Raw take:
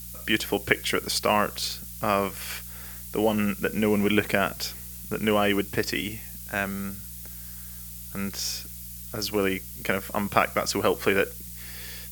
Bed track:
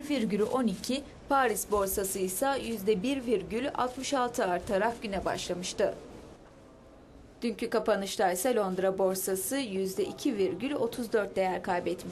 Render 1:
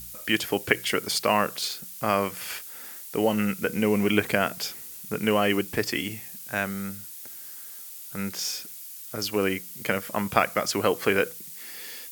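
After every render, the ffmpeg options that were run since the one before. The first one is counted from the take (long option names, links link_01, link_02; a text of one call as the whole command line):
ffmpeg -i in.wav -af "bandreject=frequency=60:width_type=h:width=4,bandreject=frequency=120:width_type=h:width=4,bandreject=frequency=180:width_type=h:width=4" out.wav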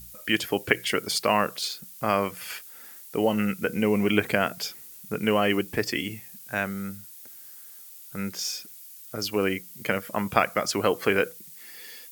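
ffmpeg -i in.wav -af "afftdn=noise_reduction=6:noise_floor=-41" out.wav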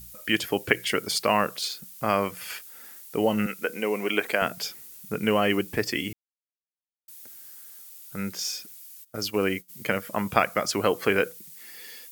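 ffmpeg -i in.wav -filter_complex "[0:a]asettb=1/sr,asplit=3[link_01][link_02][link_03];[link_01]atrim=end=3.464[link_04];[link_02]atrim=start=3.46:end=4.42,asetpts=PTS-STARTPTS,afade=type=in:duration=0.004:curve=qsin,afade=type=out:start_time=0.956:duration=0.004:curve=qsin,highpass=380[link_05];[link_03]atrim=start=4.416[link_06];[link_04][link_05]acrossfade=duration=0.004:curve1=hsin:curve2=qsin[link_07];[link_07][link_06]acrossfade=duration=0.004:curve1=qsin:curve2=hsin,asplit=3[link_08][link_09][link_10];[link_08]afade=type=out:start_time=9.03:duration=0.02[link_11];[link_09]agate=range=-33dB:threshold=-34dB:ratio=3:release=100:detection=peak,afade=type=in:start_time=9.03:duration=0.02,afade=type=out:start_time=9.68:duration=0.02[link_12];[link_10]afade=type=in:start_time=9.68:duration=0.02[link_13];[link_11][link_12][link_13]amix=inputs=3:normalize=0,asplit=3[link_14][link_15][link_16];[link_14]atrim=end=6.13,asetpts=PTS-STARTPTS,afade=type=out:start_time=6.126:duration=0.004:curve=hsin[link_17];[link_15]atrim=start=6.13:end=7.08,asetpts=PTS-STARTPTS,volume=0[link_18];[link_16]atrim=start=7.08,asetpts=PTS-STARTPTS,afade=type=in:duration=0.004:curve=hsin[link_19];[link_17][link_18][link_19]concat=n=3:v=0:a=1" out.wav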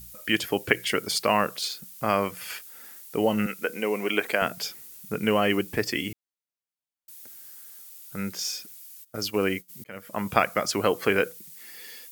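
ffmpeg -i in.wav -filter_complex "[0:a]asplit=2[link_01][link_02];[link_01]atrim=end=9.84,asetpts=PTS-STARTPTS,afade=type=out:start_time=9.836:duration=0.004:curve=hsin[link_03];[link_02]atrim=start=9.84,asetpts=PTS-STARTPTS,afade=type=in:duration=0.46[link_04];[link_03][link_04]concat=n=2:v=0:a=1" out.wav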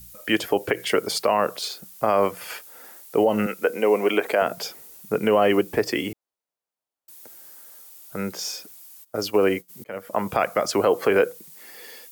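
ffmpeg -i in.wav -filter_complex "[0:a]acrossover=split=380|1000[link_01][link_02][link_03];[link_02]dynaudnorm=framelen=150:gausssize=3:maxgain=12dB[link_04];[link_01][link_04][link_03]amix=inputs=3:normalize=0,alimiter=limit=-9dB:level=0:latency=1:release=85" out.wav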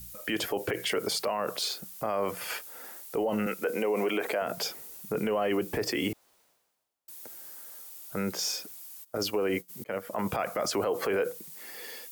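ffmpeg -i in.wav -af "alimiter=limit=-20.5dB:level=0:latency=1:release=23,areverse,acompressor=mode=upward:threshold=-45dB:ratio=2.5,areverse" out.wav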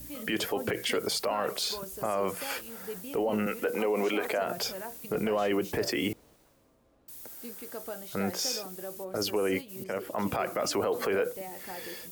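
ffmpeg -i in.wav -i bed.wav -filter_complex "[1:a]volume=-13dB[link_01];[0:a][link_01]amix=inputs=2:normalize=0" out.wav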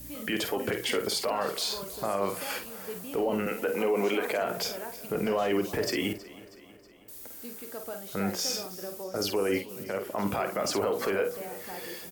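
ffmpeg -i in.wav -filter_complex "[0:a]asplit=2[link_01][link_02];[link_02]adelay=50,volume=-8dB[link_03];[link_01][link_03]amix=inputs=2:normalize=0,aecho=1:1:320|640|960|1280|1600:0.112|0.064|0.0365|0.0208|0.0118" out.wav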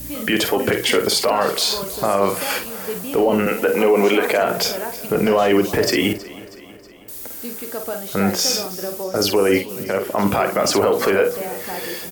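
ffmpeg -i in.wav -af "volume=11.5dB" out.wav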